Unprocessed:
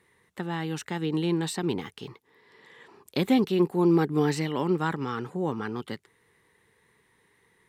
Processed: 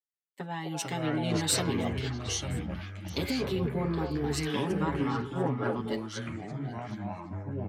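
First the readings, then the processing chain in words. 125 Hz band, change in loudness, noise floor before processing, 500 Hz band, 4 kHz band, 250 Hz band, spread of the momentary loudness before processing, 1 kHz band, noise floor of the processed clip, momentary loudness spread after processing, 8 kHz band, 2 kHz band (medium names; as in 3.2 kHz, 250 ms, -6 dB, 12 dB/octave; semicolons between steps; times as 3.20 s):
0.0 dB, -4.5 dB, -67 dBFS, -4.0 dB, +3.0 dB, -5.0 dB, 17 LU, -2.0 dB, -57 dBFS, 10 LU, +8.5 dB, -1.0 dB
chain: high-pass 130 Hz 12 dB/octave; de-hum 278.9 Hz, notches 21; spectral noise reduction 10 dB; peaking EQ 1.4 kHz -3 dB; comb 7.2 ms, depth 98%; peak limiter -18 dBFS, peak gain reduction 10.5 dB; compression, threshold -28 dBFS, peak gain reduction 6.5 dB; ever faster or slower copies 316 ms, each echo -5 st, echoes 3; on a send: repeats whose band climbs or falls 257 ms, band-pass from 590 Hz, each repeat 1.4 oct, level -1 dB; on the sum: three bands expanded up and down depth 100%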